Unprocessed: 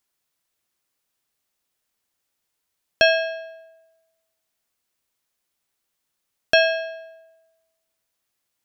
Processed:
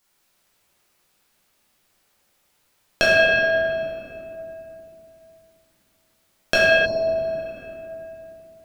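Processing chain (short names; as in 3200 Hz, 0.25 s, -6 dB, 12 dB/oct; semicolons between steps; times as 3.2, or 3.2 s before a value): compressor 4:1, threshold -28 dBFS, peak gain reduction 14 dB; shoebox room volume 120 m³, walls hard, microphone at 1 m; spectral repair 6.88–7.55, 1100–4100 Hz after; gain +6 dB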